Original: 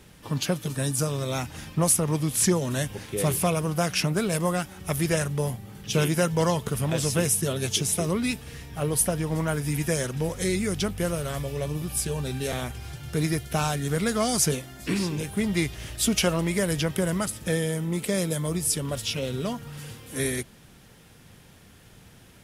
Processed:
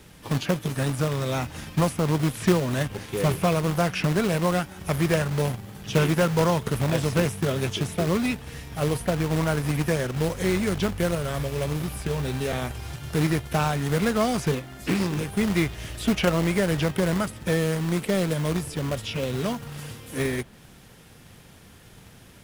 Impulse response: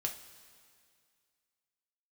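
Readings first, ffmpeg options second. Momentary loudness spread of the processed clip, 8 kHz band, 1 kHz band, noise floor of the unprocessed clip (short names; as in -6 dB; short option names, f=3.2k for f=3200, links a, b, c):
7 LU, -9.0 dB, +3.0 dB, -52 dBFS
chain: -filter_complex "[0:a]acrossover=split=800|3100[a][b][c];[a]acrusher=bits=2:mode=log:mix=0:aa=0.000001[d];[c]acompressor=threshold=-44dB:ratio=6[e];[d][b][e]amix=inputs=3:normalize=0,volume=2dB"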